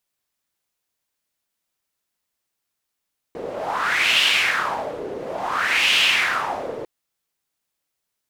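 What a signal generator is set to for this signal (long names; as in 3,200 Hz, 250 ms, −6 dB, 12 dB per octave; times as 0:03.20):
wind from filtered noise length 3.50 s, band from 440 Hz, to 2,900 Hz, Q 3.9, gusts 2, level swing 13.5 dB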